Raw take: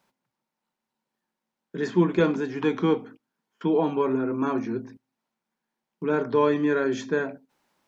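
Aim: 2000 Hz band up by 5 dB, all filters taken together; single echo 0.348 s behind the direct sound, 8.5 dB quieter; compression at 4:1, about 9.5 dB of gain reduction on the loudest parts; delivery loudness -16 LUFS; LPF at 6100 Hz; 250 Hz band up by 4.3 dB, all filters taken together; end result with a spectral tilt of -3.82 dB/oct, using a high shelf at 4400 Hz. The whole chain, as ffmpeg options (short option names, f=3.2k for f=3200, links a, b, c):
-af "lowpass=6.1k,equalizer=f=250:t=o:g=5.5,equalizer=f=2k:t=o:g=8.5,highshelf=f=4.4k:g=-9,acompressor=threshold=-24dB:ratio=4,aecho=1:1:348:0.376,volume=13dB"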